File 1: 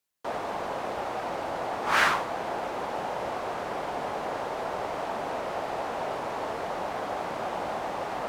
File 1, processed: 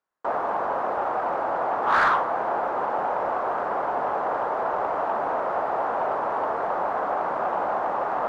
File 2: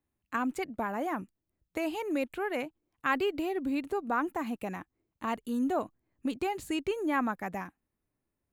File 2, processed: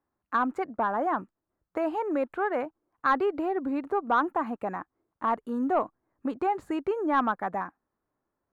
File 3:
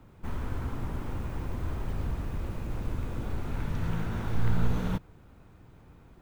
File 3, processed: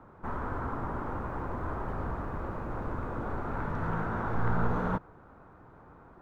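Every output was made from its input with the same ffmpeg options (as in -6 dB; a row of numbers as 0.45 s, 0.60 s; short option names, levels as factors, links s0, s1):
-filter_complex "[0:a]highshelf=f=1900:t=q:w=1.5:g=-11,asplit=2[s0][s1];[s1]highpass=f=720:p=1,volume=5.01,asoftclip=type=tanh:threshold=0.299[s2];[s0][s2]amix=inputs=2:normalize=0,lowpass=f=1900:p=1,volume=0.501"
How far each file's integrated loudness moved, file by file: +5.5 LU, +4.0 LU, 0.0 LU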